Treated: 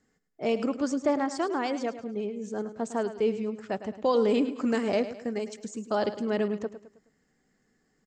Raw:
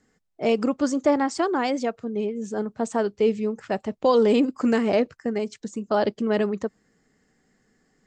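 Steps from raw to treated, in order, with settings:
0:04.74–0:06.34: high-shelf EQ 6,900 Hz +11.5 dB
repeating echo 106 ms, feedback 43%, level −12.5 dB
level −5.5 dB

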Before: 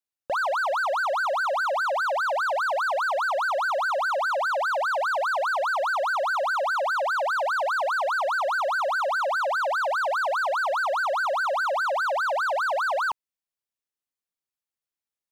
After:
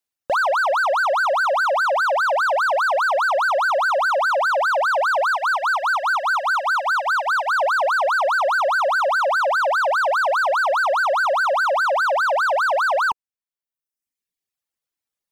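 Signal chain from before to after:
0:05.30–0:07.53: high-pass filter 760 Hz 24 dB per octave
reverb reduction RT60 1 s
level +6.5 dB

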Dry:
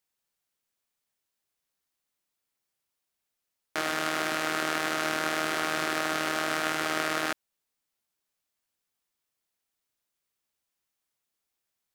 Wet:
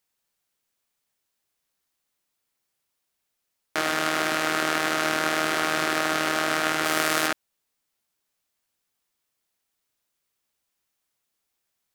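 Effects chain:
0:06.84–0:07.26: high-shelf EQ 8,900 Hz → 4,700 Hz +9 dB
level +4.5 dB

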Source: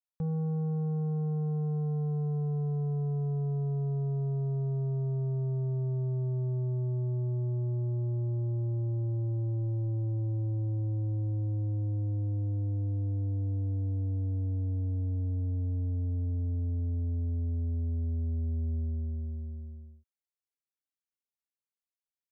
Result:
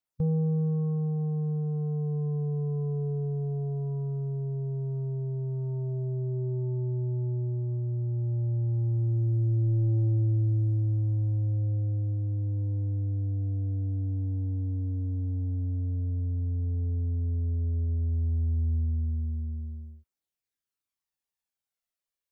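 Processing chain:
phase shifter 0.1 Hz, delay 4 ms, feedback 39%
formants moved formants −3 semitones
level +2.5 dB

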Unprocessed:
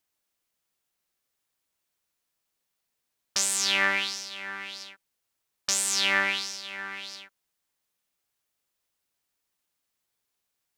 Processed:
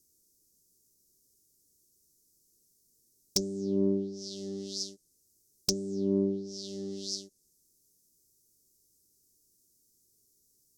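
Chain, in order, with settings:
treble cut that deepens with the level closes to 570 Hz, closed at −24.5 dBFS
elliptic band-stop filter 400–5,600 Hz, stop band 50 dB
in parallel at −3.5 dB: sine wavefolder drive 18 dB, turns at −7.5 dBFS
on the sum: level −4.5 dB

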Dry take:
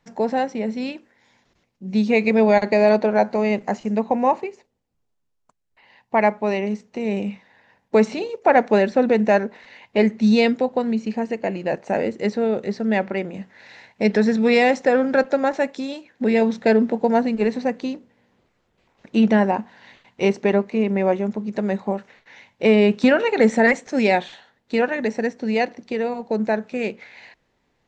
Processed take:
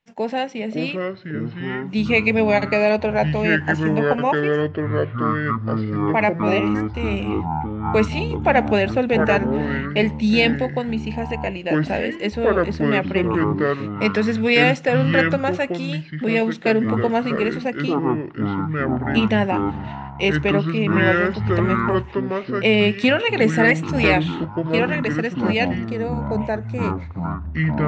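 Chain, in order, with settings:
parametric band 2,800 Hz +11.5 dB 0.8 octaves, from 0:25.90 −2.5 dB
noise gate −41 dBFS, range −12 dB
delay with pitch and tempo change per echo 476 ms, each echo −6 semitones, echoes 3
level −2.5 dB

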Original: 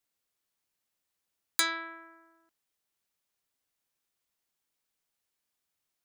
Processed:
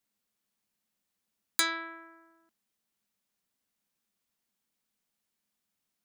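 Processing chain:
parametric band 210 Hz +13.5 dB 0.47 octaves

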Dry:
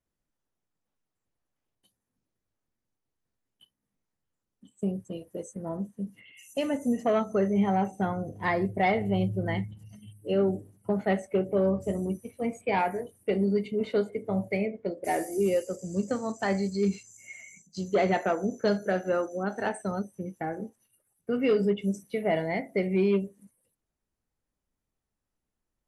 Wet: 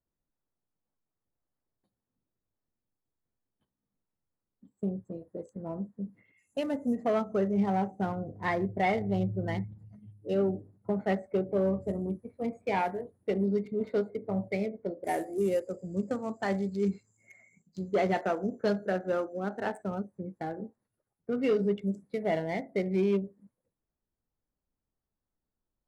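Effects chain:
adaptive Wiener filter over 15 samples
level −2.5 dB

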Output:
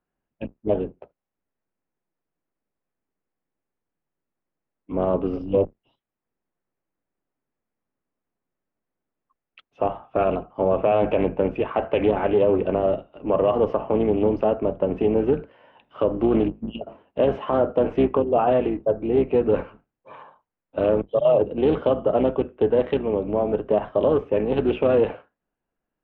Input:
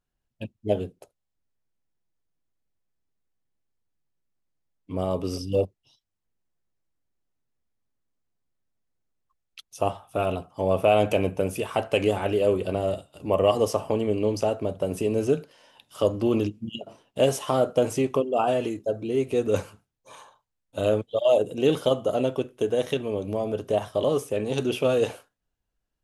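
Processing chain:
sub-octave generator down 2 octaves, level +1 dB
Chebyshev low-pass filter 2,900 Hz, order 3
three-way crossover with the lows and the highs turned down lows −15 dB, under 180 Hz, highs −16 dB, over 2,200 Hz
brickwall limiter −16 dBFS, peak gain reduction 6.5 dB
highs frequency-modulated by the lows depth 0.22 ms
level +6 dB

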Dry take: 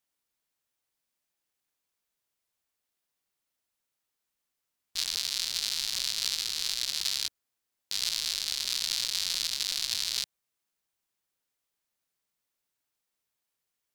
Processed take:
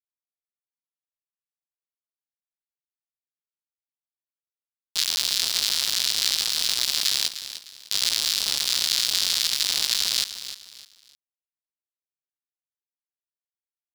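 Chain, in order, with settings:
bit reduction 5 bits
repeating echo 304 ms, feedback 32%, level −12 dB
level +7 dB

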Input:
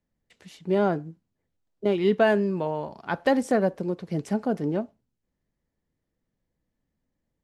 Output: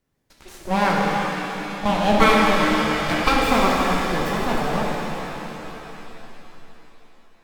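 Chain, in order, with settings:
full-wave rectification
harmonic generator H 8 −23 dB, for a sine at −8.5 dBFS
reverb with rising layers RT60 3.7 s, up +7 semitones, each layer −8 dB, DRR −3.5 dB
level +8 dB

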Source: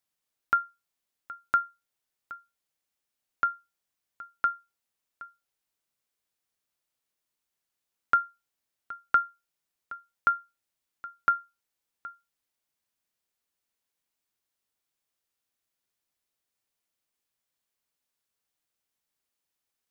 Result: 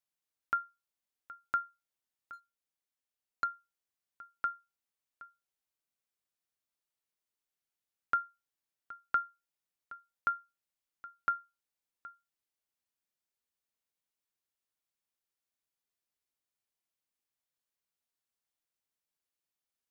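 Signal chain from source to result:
0:02.33–0:03.44: leveller curve on the samples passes 1
level −7.5 dB

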